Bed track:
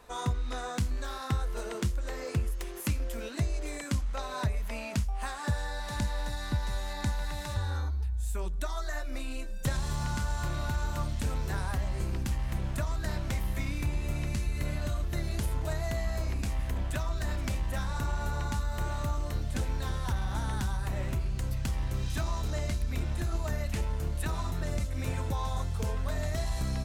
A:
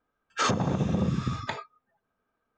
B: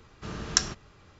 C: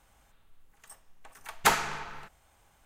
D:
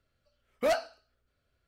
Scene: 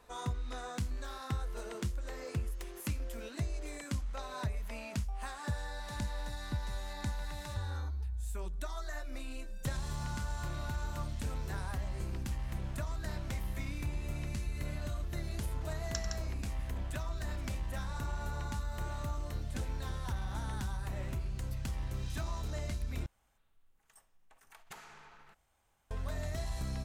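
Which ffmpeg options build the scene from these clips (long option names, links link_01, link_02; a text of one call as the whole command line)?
ffmpeg -i bed.wav -i cue0.wav -i cue1.wav -i cue2.wav -filter_complex "[0:a]volume=-6dB[link_01];[2:a]aecho=1:1:93.29|163.3:0.316|0.562[link_02];[3:a]acompressor=threshold=-52dB:ratio=3:attack=69:release=27:knee=1:detection=peak[link_03];[link_01]asplit=2[link_04][link_05];[link_04]atrim=end=23.064[link_06];[link_03]atrim=end=2.85,asetpts=PTS-STARTPTS,volume=-11dB[link_07];[link_05]atrim=start=25.906[link_08];[link_02]atrim=end=1.19,asetpts=PTS-STARTPTS,volume=-17dB,afade=type=in:duration=0.004:curve=hsin,afade=type=out:start_time=1.186:duration=0.004:curve=hsin,adelay=15380[link_09];[link_06][link_07]acrossfade=duration=0.004:curve1=hsin:curve2=hsin[link_10];[link_10][link_08]acrossfade=duration=0.004:curve1=hsin:curve2=hsin[link_11];[link_11][link_09]amix=inputs=2:normalize=0" out.wav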